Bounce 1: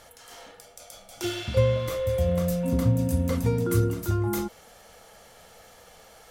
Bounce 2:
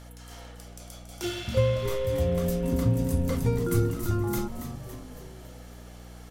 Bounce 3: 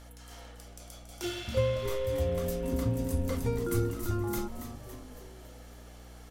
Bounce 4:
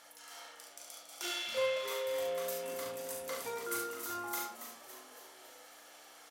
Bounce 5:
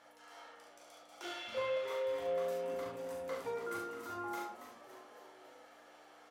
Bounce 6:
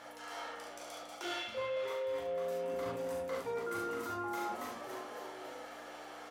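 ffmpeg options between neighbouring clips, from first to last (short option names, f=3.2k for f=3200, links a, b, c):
-filter_complex "[0:a]aeval=exprs='val(0)+0.00708*(sin(2*PI*60*n/s)+sin(2*PI*2*60*n/s)/2+sin(2*PI*3*60*n/s)/3+sin(2*PI*4*60*n/s)/4+sin(2*PI*5*60*n/s)/5)':c=same,asplit=7[a][b][c][d][e][f][g];[b]adelay=279,afreqshift=-120,volume=-9.5dB[h];[c]adelay=558,afreqshift=-240,volume=-14.7dB[i];[d]adelay=837,afreqshift=-360,volume=-19.9dB[j];[e]adelay=1116,afreqshift=-480,volume=-25.1dB[k];[f]adelay=1395,afreqshift=-600,volume=-30.3dB[l];[g]adelay=1674,afreqshift=-720,volume=-35.5dB[m];[a][h][i][j][k][l][m]amix=inputs=7:normalize=0,volume=-2dB"
-af "equalizer=f=150:t=o:w=0.43:g=-13.5,volume=-3dB"
-filter_complex "[0:a]highpass=770,asplit=2[a][b];[b]aecho=0:1:40|70:0.562|0.531[c];[a][c]amix=inputs=2:normalize=0"
-af "lowpass=f=1.1k:p=1,flanger=delay=9.7:depth=1.3:regen=-45:speed=0.78:shape=sinusoidal,volume=6dB"
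-af "lowshelf=f=170:g=4.5,areverse,acompressor=threshold=-46dB:ratio=6,areverse,volume=10.5dB"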